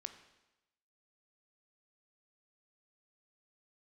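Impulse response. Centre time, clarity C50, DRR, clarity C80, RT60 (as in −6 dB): 12 ms, 10.5 dB, 8.0 dB, 12.5 dB, 0.95 s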